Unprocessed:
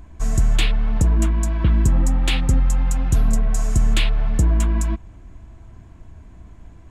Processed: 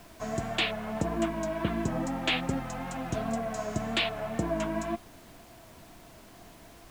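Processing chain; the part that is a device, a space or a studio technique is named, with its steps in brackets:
horn gramophone (band-pass filter 230–4,100 Hz; parametric band 680 Hz +10 dB 0.21 octaves; tape wow and flutter; pink noise bed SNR 21 dB)
level −2 dB

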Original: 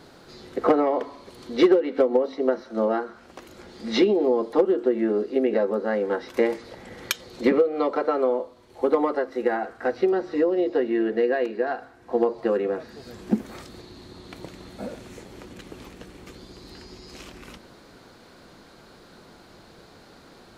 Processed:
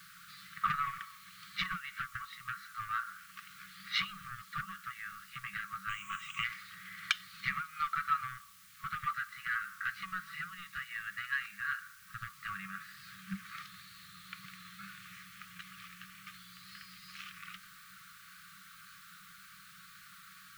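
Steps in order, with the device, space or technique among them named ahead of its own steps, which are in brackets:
tape answering machine (band-pass filter 320–3,100 Hz; soft clipping −15.5 dBFS, distortion −16 dB; tape wow and flutter; white noise bed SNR 32 dB)
brick-wall band-stop 200–1,100 Hz
0:05.89–0:06.44: EQ curve with evenly spaced ripples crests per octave 0.7, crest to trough 18 dB
level +1 dB

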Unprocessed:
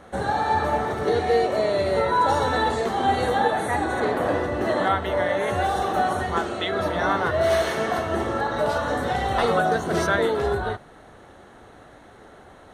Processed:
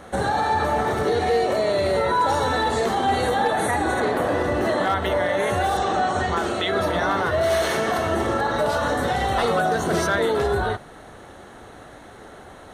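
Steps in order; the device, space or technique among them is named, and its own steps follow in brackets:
0:05.77–0:06.37: elliptic low-pass filter 8,100 Hz, stop band 40 dB
high-shelf EQ 4,900 Hz +5 dB
clipper into limiter (hard clipping −13 dBFS, distortion −28 dB; brickwall limiter −18 dBFS, peak gain reduction 5 dB)
level +4.5 dB

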